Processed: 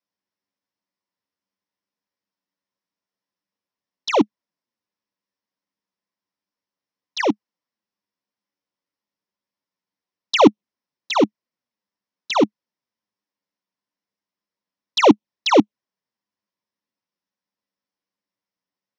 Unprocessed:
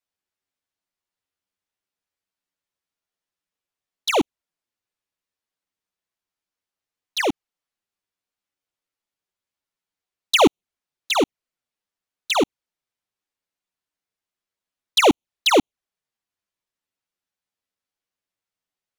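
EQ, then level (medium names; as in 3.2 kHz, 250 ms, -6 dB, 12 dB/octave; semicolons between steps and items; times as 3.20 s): cabinet simulation 150–5700 Hz, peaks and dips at 210 Hz +8 dB, 300 Hz +4 dB, 540 Hz +6 dB, 1 kHz +9 dB, 1.9 kHz +5 dB, 5.4 kHz +10 dB; bass shelf 290 Hz +10.5 dB; -4.5 dB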